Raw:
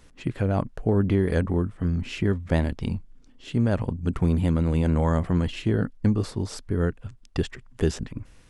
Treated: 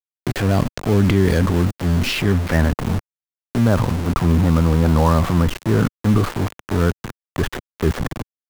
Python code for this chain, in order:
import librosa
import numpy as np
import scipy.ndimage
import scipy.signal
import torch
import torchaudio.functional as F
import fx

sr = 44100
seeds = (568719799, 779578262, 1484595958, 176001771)

y = fx.high_shelf(x, sr, hz=5500.0, db=10.5)
y = fx.transient(y, sr, attack_db=-8, sustain_db=7)
y = fx.filter_sweep_lowpass(y, sr, from_hz=5500.0, to_hz=1200.0, start_s=2.05, end_s=2.71, q=2.2)
y = np.where(np.abs(y) >= 10.0 ** (-30.0 / 20.0), y, 0.0)
y = fx.band_squash(y, sr, depth_pct=40)
y = F.gain(torch.from_numpy(y), 7.0).numpy()